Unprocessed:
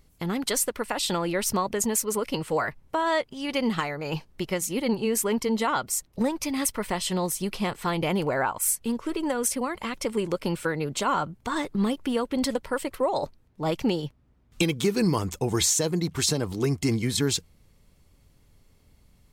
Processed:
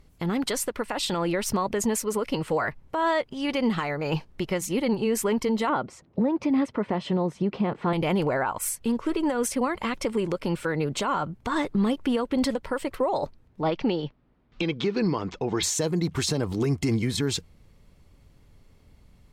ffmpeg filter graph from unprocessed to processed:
ffmpeg -i in.wav -filter_complex "[0:a]asettb=1/sr,asplit=3[link_01][link_02][link_03];[link_01]atrim=end=5.694[link_04];[link_02]atrim=start=5.69:end=7.93,asetpts=PTS-STARTPTS,afade=type=in:duration=0.004:curve=qsin,afade=type=out:start_time=2.236:duration=0.004:curve=qsin,highpass=150,lowpass=3900,tiltshelf=frequency=1100:gain=7[link_05];[link_03]atrim=start=7.926[link_06];[link_04][link_05]acrossfade=duration=0.004:curve1=hsin:curve2=qsin[link_07];[link_07][link_06]acrossfade=duration=0.004:curve1=qsin:curve2=hsin,asettb=1/sr,asplit=3[link_08][link_09][link_10];[link_08]atrim=end=13.614[link_11];[link_09]atrim=start=13.61:end=15.63,asetpts=PTS-STARTPTS,afade=type=in:duration=0.004:curve=qsin,afade=type=out:start_time=2.016:duration=0.004:curve=qsin,lowpass=frequency=4900:width=0.5412,lowpass=frequency=4900:width=1.3066,equalizer=frequency=72:width_type=o:width=1.5:gain=-13[link_12];[link_10]atrim=start=15.626[link_13];[link_11][link_12]acrossfade=duration=0.004:curve1=hsin:curve2=qsin[link_14];[link_14][link_13]acrossfade=duration=0.004:curve1=qsin:curve2=hsin,aemphasis=mode=reproduction:type=cd,alimiter=limit=-20dB:level=0:latency=1:release=117,volume=3.5dB" out.wav

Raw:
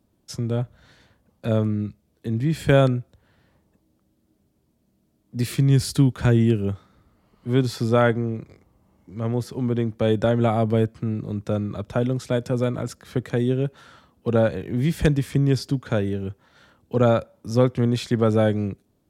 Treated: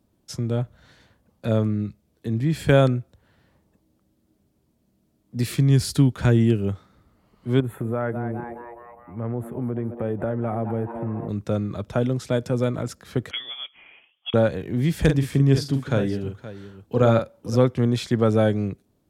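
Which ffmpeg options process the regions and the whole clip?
ffmpeg -i in.wav -filter_complex "[0:a]asettb=1/sr,asplit=3[link_01][link_02][link_03];[link_01]atrim=end=7.604[link_04];[link_02]atrim=start=7.6:end=11.29,asetpts=PTS-STARTPTS,afade=type=in:duration=0.004:curve=qsin,afade=type=out:start_time=3.686:duration=0.004:curve=qsin,asplit=7[link_05][link_06][link_07][link_08][link_09][link_10][link_11];[link_06]adelay=209,afreqshift=120,volume=-14dB[link_12];[link_07]adelay=418,afreqshift=240,volume=-19.2dB[link_13];[link_08]adelay=627,afreqshift=360,volume=-24.4dB[link_14];[link_09]adelay=836,afreqshift=480,volume=-29.6dB[link_15];[link_10]adelay=1045,afreqshift=600,volume=-34.8dB[link_16];[link_11]adelay=1254,afreqshift=720,volume=-40dB[link_17];[link_05][link_12][link_13][link_14][link_15][link_16][link_17]amix=inputs=7:normalize=0,atrim=end_sample=162729,acompressor=threshold=-24dB:ratio=2.5:attack=3.2:release=140:knee=1:detection=peak,asuperstop=centerf=5000:order=4:qfactor=0.52[link_18];[link_03]atrim=start=11.286[link_19];[link_04][link_18]acrossfade=duration=0.004:curve1=hsin:curve2=qsin[link_20];[link_20][link_19]acrossfade=duration=0.004:curve1=qsin:curve2=hsin,asettb=1/sr,asplit=3[link_21][link_22][link_23];[link_21]atrim=end=13.314[link_24];[link_22]atrim=start=13.31:end=14.34,asetpts=PTS-STARTPTS,afade=type=in:duration=0.004:curve=qsin,afade=type=out:start_time=1.026:duration=0.004:curve=qsin,highpass=frequency=530:width=0.5412,highpass=frequency=530:width=1.3066,lowpass=frequency=3200:width_type=q:width=0.5098,lowpass=frequency=3200:width_type=q:width=0.6013,lowpass=frequency=3200:width_type=q:width=0.9,lowpass=frequency=3200:width_type=q:width=2.563,afreqshift=-3800[link_25];[link_23]atrim=start=14.336[link_26];[link_24][link_25]acrossfade=duration=0.004:curve1=hsin:curve2=qsin[link_27];[link_27][link_26]acrossfade=duration=0.004:curve1=qsin:curve2=hsin,asettb=1/sr,asplit=3[link_28][link_29][link_30];[link_28]atrim=end=15.004[link_31];[link_29]atrim=start=15:end=17.56,asetpts=PTS-STARTPTS,afade=type=in:duration=0.004:curve=qsin,afade=type=out:start_time=2.556:duration=0.004:curve=qsin,deesser=0.3,aecho=1:1:44|521:0.447|0.178,atrim=end_sample=112896[link_32];[link_30]atrim=start=17.556[link_33];[link_31][link_32]acrossfade=duration=0.004:curve1=hsin:curve2=qsin[link_34];[link_34][link_33]acrossfade=duration=0.004:curve1=qsin:curve2=hsin" out.wav

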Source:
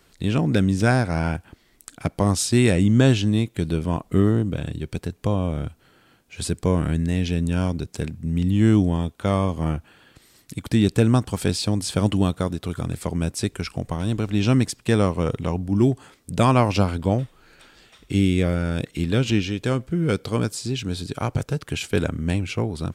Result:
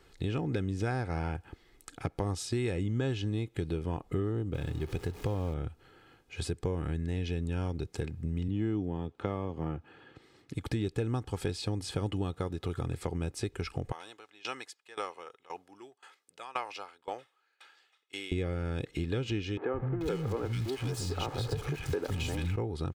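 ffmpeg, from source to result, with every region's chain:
ffmpeg -i in.wav -filter_complex "[0:a]asettb=1/sr,asplit=3[link_01][link_02][link_03];[link_01]atrim=end=4.544[link_04];[link_02]atrim=start=4.54:end=5.54,asetpts=PTS-STARTPTS,afade=type=in:duration=0.004:curve=qsin,afade=type=out:start_time=0.996:duration=0.004:curve=qsin,aeval=exprs='val(0)+0.5*0.015*sgn(val(0))':channel_layout=same,acrusher=bits=6:mode=log:mix=0:aa=0.000001[link_05];[link_03]atrim=start=5.536[link_06];[link_04][link_05]acrossfade=duration=0.004:curve1=hsin:curve2=qsin[link_07];[link_07][link_06]acrossfade=duration=0.004:curve1=qsin:curve2=hsin,asettb=1/sr,asplit=3[link_08][link_09][link_10];[link_08]atrim=end=8.484[link_11];[link_09]atrim=start=8.48:end=10.54,asetpts=PTS-STARTPTS,afade=type=in:duration=0.004:curve=qsin,afade=type=out:start_time=2.056:duration=0.004:curve=qsin,highpass=200,aemphasis=mode=reproduction:type=bsi[link_12];[link_10]atrim=start=10.536[link_13];[link_11][link_12]acrossfade=duration=0.004:curve1=hsin:curve2=qsin[link_14];[link_14][link_13]acrossfade=duration=0.004:curve1=qsin:curve2=hsin,asettb=1/sr,asplit=3[link_15][link_16][link_17];[link_15]atrim=end=13.924[link_18];[link_16]atrim=start=13.92:end=18.32,asetpts=PTS-STARTPTS,afade=type=in:duration=0.004:curve=qsin,afade=type=out:start_time=4.396:duration=0.004:curve=qsin,highpass=880,aeval=exprs='val(0)*pow(10,-22*if(lt(mod(1.9*n/s,1),2*abs(1.9)/1000),1-mod(1.9*n/s,1)/(2*abs(1.9)/1000),(mod(1.9*n/s,1)-2*abs(1.9)/1000)/(1-2*abs(1.9)/1000))/20)':channel_layout=same[link_19];[link_17]atrim=start=18.316[link_20];[link_18][link_19]acrossfade=duration=0.004:curve1=hsin:curve2=qsin[link_21];[link_21][link_20]acrossfade=duration=0.004:curve1=qsin:curve2=hsin,asettb=1/sr,asplit=3[link_22][link_23][link_24];[link_22]atrim=end=19.574[link_25];[link_23]atrim=start=19.57:end=22.56,asetpts=PTS-STARTPTS,afade=type=in:duration=0.004:curve=qsin,afade=type=out:start_time=2.986:duration=0.004:curve=qsin,aeval=exprs='val(0)+0.5*0.0447*sgn(val(0))':channel_layout=same,acrossover=split=230|1900[link_26][link_27][link_28];[link_26]adelay=170[link_29];[link_28]adelay=440[link_30];[link_29][link_27][link_30]amix=inputs=3:normalize=0,atrim=end_sample=131859[link_31];[link_24]atrim=start=22.556[link_32];[link_25][link_31]acrossfade=duration=0.004:curve1=hsin:curve2=qsin[link_33];[link_33][link_32]acrossfade=duration=0.004:curve1=qsin:curve2=hsin,aecho=1:1:2.4:0.48,acompressor=threshold=-28dB:ratio=4,highshelf=frequency=5700:gain=-11,volume=-2.5dB" out.wav

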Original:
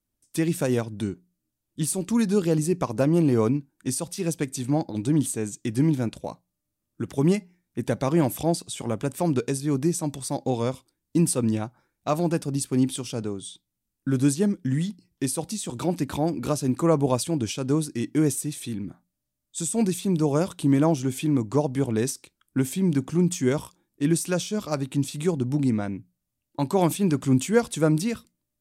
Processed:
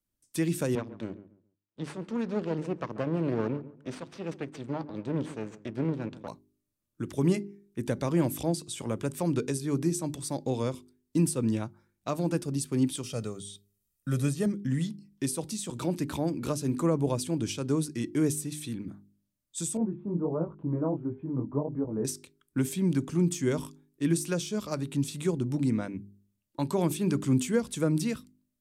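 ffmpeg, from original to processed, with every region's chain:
ffmpeg -i in.wav -filter_complex "[0:a]asettb=1/sr,asplit=3[link_01][link_02][link_03];[link_01]atrim=end=0.754[link_04];[link_02]atrim=start=0.75:end=6.28,asetpts=PTS-STARTPTS,afade=type=in:duration=0.004:curve=qsin,afade=type=out:start_time=5.526:duration=0.004:curve=qsin,aeval=exprs='max(val(0),0)':channel_layout=same,highpass=130,lowpass=3500,asplit=2[link_05][link_06];[link_06]adelay=138,lowpass=frequency=1500:poles=1,volume=-15.5dB,asplit=2[link_07][link_08];[link_08]adelay=138,lowpass=frequency=1500:poles=1,volume=0.26,asplit=2[link_09][link_10];[link_10]adelay=138,lowpass=frequency=1500:poles=1,volume=0.26[link_11];[link_05][link_07][link_09][link_11]amix=inputs=4:normalize=0,atrim=end_sample=243873[link_12];[link_03]atrim=start=6.276[link_13];[link_04][link_12]acrossfade=duration=0.004:curve1=hsin:curve2=qsin[link_14];[link_14][link_13]acrossfade=duration=0.004:curve1=qsin:curve2=hsin,asettb=1/sr,asplit=3[link_15][link_16][link_17];[link_15]atrim=end=13.034[link_18];[link_16]atrim=start=13.03:end=14.46,asetpts=PTS-STARTPTS,afade=type=in:duration=0.004:curve=qsin,afade=type=out:start_time=1.426:duration=0.004:curve=qsin,aemphasis=mode=production:type=cd,aecho=1:1:1.6:0.56,atrim=end_sample=63063,acrossover=split=2800[link_19][link_20];[link_20]acompressor=threshold=-37dB:ratio=4:attack=1:release=60[link_21];[link_19][link_21]amix=inputs=2:normalize=0[link_22];[link_17]atrim=start=14.456[link_23];[link_18][link_22]acrossfade=duration=0.004:curve1=hsin:curve2=qsin[link_24];[link_24][link_23]acrossfade=duration=0.004:curve1=qsin:curve2=hsin,asettb=1/sr,asplit=3[link_25][link_26][link_27];[link_25]atrim=end=19.774[link_28];[link_26]atrim=start=19.77:end=22.05,asetpts=PTS-STARTPTS,afade=type=in:duration=0.004:curve=qsin,afade=type=out:start_time=2.276:duration=0.004:curve=qsin,lowpass=frequency=1100:width=0.5412,lowpass=frequency=1100:width=1.3066,flanger=delay=18:depth=6.1:speed=1.5[link_29];[link_27]atrim=start=22.046[link_30];[link_28][link_29]acrossfade=duration=0.004:curve1=hsin:curve2=qsin[link_31];[link_31][link_30]acrossfade=duration=0.004:curve1=qsin:curve2=hsin,equalizer=frequency=750:width_type=o:width=0.28:gain=-5.5,bandreject=frequency=50.28:width_type=h:width=4,bandreject=frequency=100.56:width_type=h:width=4,bandreject=frequency=150.84:width_type=h:width=4,bandreject=frequency=201.12:width_type=h:width=4,bandreject=frequency=251.4:width_type=h:width=4,bandreject=frequency=301.68:width_type=h:width=4,bandreject=frequency=351.96:width_type=h:width=4,bandreject=frequency=402.24:width_type=h:width=4,acrossover=split=410[link_32][link_33];[link_33]acompressor=threshold=-26dB:ratio=6[link_34];[link_32][link_34]amix=inputs=2:normalize=0,volume=-3.5dB" out.wav

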